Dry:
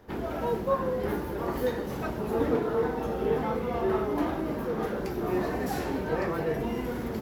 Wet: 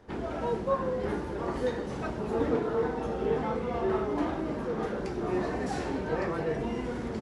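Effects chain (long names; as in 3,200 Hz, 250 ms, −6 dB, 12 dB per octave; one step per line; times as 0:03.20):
downsampling to 22,050 Hz
level −1.5 dB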